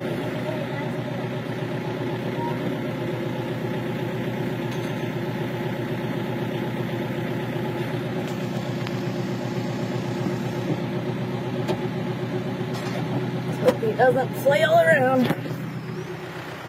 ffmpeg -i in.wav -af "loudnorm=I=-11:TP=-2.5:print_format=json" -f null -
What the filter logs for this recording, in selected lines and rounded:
"input_i" : "-24.8",
"input_tp" : "-4.4",
"input_lra" : "6.5",
"input_thresh" : "-34.8",